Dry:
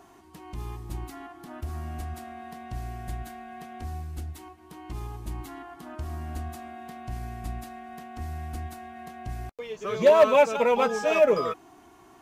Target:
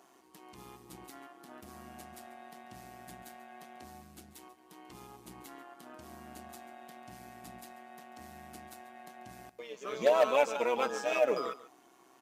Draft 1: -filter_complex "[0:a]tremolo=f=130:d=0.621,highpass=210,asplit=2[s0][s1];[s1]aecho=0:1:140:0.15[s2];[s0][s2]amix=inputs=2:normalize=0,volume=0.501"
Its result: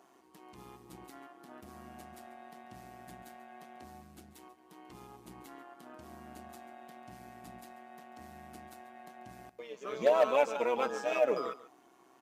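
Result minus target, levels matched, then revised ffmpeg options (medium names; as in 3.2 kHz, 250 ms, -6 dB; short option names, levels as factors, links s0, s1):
4 kHz band -3.5 dB
-filter_complex "[0:a]tremolo=f=130:d=0.621,highpass=210,highshelf=f=2500:g=5.5,asplit=2[s0][s1];[s1]aecho=0:1:140:0.15[s2];[s0][s2]amix=inputs=2:normalize=0,volume=0.501"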